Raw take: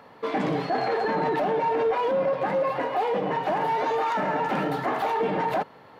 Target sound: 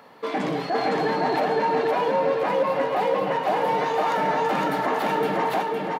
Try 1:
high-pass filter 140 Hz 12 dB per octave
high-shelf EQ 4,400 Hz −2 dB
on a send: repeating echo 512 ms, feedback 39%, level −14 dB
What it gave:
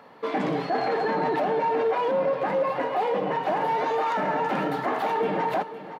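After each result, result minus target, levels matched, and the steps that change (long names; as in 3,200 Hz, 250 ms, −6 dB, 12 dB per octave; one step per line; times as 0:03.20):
echo-to-direct −11.5 dB; 8,000 Hz band −6.0 dB
change: repeating echo 512 ms, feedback 39%, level −2.5 dB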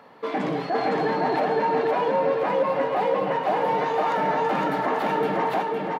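8,000 Hz band −6.0 dB
change: high-shelf EQ 4,400 Hz +7 dB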